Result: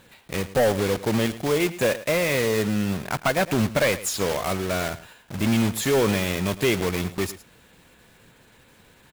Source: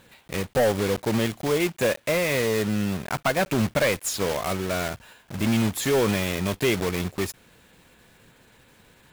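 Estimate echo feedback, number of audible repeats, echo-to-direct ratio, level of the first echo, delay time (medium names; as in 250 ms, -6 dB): no regular repeats, 1, -16.0 dB, -16.0 dB, 109 ms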